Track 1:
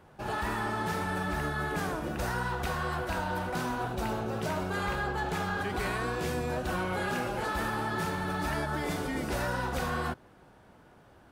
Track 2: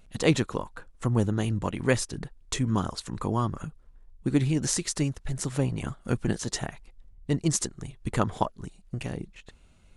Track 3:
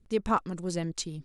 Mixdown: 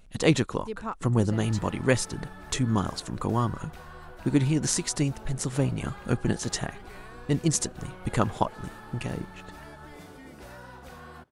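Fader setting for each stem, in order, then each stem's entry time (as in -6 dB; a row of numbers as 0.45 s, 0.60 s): -13.5 dB, +1.0 dB, -8.0 dB; 1.10 s, 0.00 s, 0.55 s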